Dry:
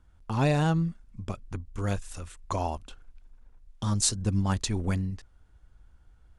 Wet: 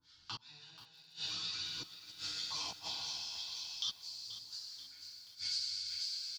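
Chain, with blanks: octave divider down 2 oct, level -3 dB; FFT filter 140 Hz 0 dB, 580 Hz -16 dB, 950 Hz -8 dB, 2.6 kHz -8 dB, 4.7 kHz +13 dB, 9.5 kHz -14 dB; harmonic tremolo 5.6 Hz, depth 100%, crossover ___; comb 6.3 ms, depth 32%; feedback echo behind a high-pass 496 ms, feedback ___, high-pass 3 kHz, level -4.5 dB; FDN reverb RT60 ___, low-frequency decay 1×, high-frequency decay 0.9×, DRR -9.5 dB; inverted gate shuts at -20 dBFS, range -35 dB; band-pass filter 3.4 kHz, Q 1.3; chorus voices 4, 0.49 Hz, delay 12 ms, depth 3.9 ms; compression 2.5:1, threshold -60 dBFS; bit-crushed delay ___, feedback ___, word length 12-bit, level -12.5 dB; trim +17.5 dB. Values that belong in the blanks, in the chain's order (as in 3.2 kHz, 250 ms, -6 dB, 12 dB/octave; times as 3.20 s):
970 Hz, 45%, 1.9 s, 482 ms, 55%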